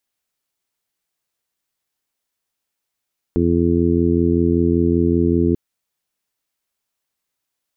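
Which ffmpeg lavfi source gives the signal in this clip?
ffmpeg -f lavfi -i "aevalsrc='0.0891*sin(2*PI*85.2*t)+0.0891*sin(2*PI*170.4*t)+0.119*sin(2*PI*255.6*t)+0.126*sin(2*PI*340.8*t)+0.0708*sin(2*PI*426*t)':duration=2.19:sample_rate=44100" out.wav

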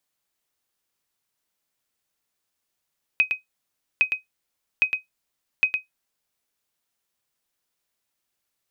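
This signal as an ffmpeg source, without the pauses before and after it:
ffmpeg -f lavfi -i "aevalsrc='0.335*(sin(2*PI*2520*mod(t,0.81))*exp(-6.91*mod(t,0.81)/0.14)+0.501*sin(2*PI*2520*max(mod(t,0.81)-0.11,0))*exp(-6.91*max(mod(t,0.81)-0.11,0)/0.14))':duration=3.24:sample_rate=44100" out.wav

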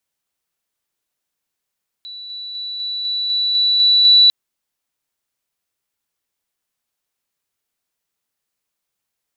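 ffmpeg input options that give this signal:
ffmpeg -f lavfi -i "aevalsrc='pow(10,(-30.5+3*floor(t/0.25))/20)*sin(2*PI*3950*t)':duration=2.25:sample_rate=44100" out.wav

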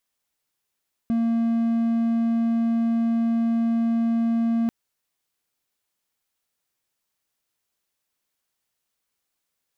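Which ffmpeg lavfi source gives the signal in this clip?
ffmpeg -f lavfi -i "aevalsrc='0.141*(1-4*abs(mod(230*t+0.25,1)-0.5))':duration=3.59:sample_rate=44100" out.wav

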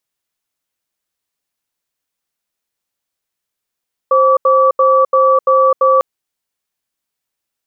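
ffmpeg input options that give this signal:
ffmpeg -f lavfi -i "aevalsrc='0.316*(sin(2*PI*527*t)+sin(2*PI*1150*t))*clip(min(mod(t,0.34),0.26-mod(t,0.34))/0.005,0,1)':duration=1.9:sample_rate=44100" out.wav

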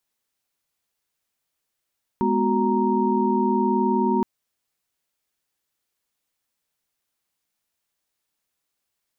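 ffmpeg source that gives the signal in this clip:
ffmpeg -f lavfi -i "aevalsrc='0.0668*(sin(2*PI*207.65*t)+sin(2*PI*246.94*t)+sin(2*PI*369.99*t)+sin(2*PI*932.33*t))':duration=2.02:sample_rate=44100" out.wav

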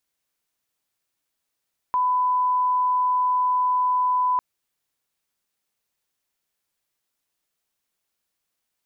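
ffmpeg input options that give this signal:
ffmpeg -f lavfi -i "sine=frequency=1000:duration=2.45:sample_rate=44100,volume=0.06dB" out.wav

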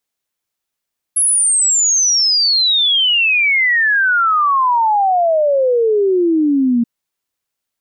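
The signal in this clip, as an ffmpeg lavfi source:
ffmpeg -f lavfi -i "aevalsrc='0.299*clip(min(t,5.68-t)/0.01,0,1)*sin(2*PI*11000*5.68/log(230/11000)*(exp(log(230/11000)*t/5.68)-1))':duration=5.68:sample_rate=44100" out.wav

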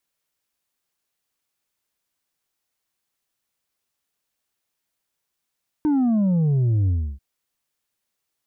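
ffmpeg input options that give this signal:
ffmpeg -f lavfi -i "aevalsrc='0.141*clip((1.34-t)/0.31,0,1)*tanh(1.58*sin(2*PI*310*1.34/log(65/310)*(exp(log(65/310)*t/1.34)-1)))/tanh(1.58)':duration=1.34:sample_rate=44100" out.wav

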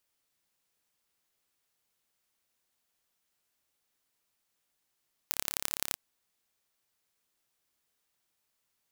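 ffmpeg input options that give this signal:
ffmpeg -f lavfi -i "aevalsrc='0.841*eq(mod(n,1264),0)*(0.5+0.5*eq(mod(n,3792),0))':duration=0.65:sample_rate=44100" out.wav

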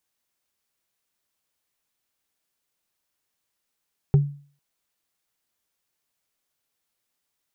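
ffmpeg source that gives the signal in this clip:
ffmpeg -f lavfi -i "aevalsrc='0.316*pow(10,-3*t/0.43)*sin(2*PI*143*t)+0.0891*pow(10,-3*t/0.127)*sin(2*PI*394.3*t)+0.0251*pow(10,-3*t/0.057)*sin(2*PI*772.8*t)+0.00708*pow(10,-3*t/0.031)*sin(2*PI*1277.4*t)+0.002*pow(10,-3*t/0.019)*sin(2*PI*1907.6*t)':duration=0.45:sample_rate=44100" out.wav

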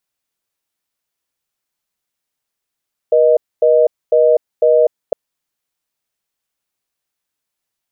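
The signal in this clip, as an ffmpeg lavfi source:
ffmpeg -f lavfi -i "aevalsrc='0.299*(sin(2*PI*480*t)+sin(2*PI*620*t))*clip(min(mod(t,0.5),0.25-mod(t,0.5))/0.005,0,1)':duration=2.01:sample_rate=44100" out.wav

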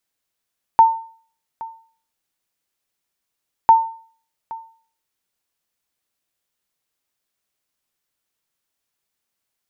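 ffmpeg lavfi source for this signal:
ffmpeg -f lavfi -i "aevalsrc='0.708*(sin(2*PI*903*mod(t,2.9))*exp(-6.91*mod(t,2.9)/0.46)+0.0891*sin(2*PI*903*max(mod(t,2.9)-0.82,0))*exp(-6.91*max(mod(t,2.9)-0.82,0)/0.46))':duration=5.8:sample_rate=44100" out.wav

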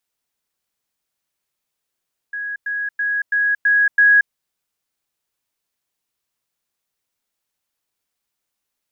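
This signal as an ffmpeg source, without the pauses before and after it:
ffmpeg -f lavfi -i "aevalsrc='pow(10,(-23.5+3*floor(t/0.33))/20)*sin(2*PI*1660*t)*clip(min(mod(t,0.33),0.23-mod(t,0.33))/0.005,0,1)':duration=1.98:sample_rate=44100" out.wav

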